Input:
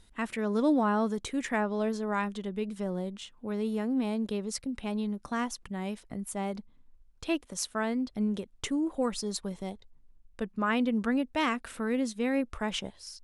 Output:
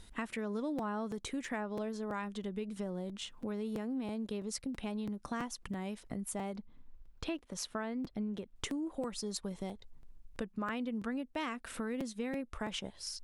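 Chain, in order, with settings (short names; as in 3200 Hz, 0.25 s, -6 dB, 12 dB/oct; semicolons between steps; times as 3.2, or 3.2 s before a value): 6.55–8.56 bell 9200 Hz -9.5 dB 1.4 oct; compressor 4:1, threshold -42 dBFS, peak gain reduction 17.5 dB; crackling interface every 0.33 s, samples 256, repeat, from 0.78; gain +4.5 dB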